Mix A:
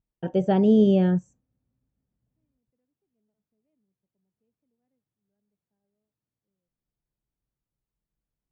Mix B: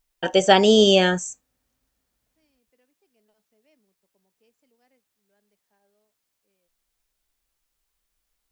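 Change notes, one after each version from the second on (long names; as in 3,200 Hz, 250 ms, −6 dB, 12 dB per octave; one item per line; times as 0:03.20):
first voice −8.0 dB
master: remove resonant band-pass 130 Hz, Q 1.6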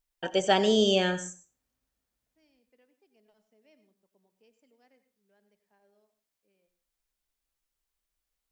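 first voice −9.0 dB
reverb: on, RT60 0.35 s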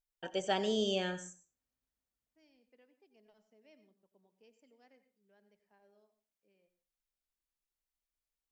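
first voice −9.5 dB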